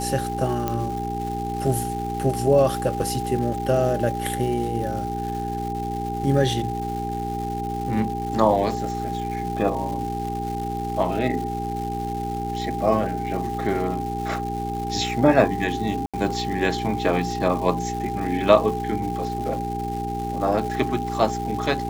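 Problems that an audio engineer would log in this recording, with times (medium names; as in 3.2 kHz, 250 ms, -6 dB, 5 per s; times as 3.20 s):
crackle 490 per s -32 dBFS
hum 60 Hz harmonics 7 -30 dBFS
whine 800 Hz -28 dBFS
0.68 s: pop -11 dBFS
16.06–16.14 s: dropout 76 ms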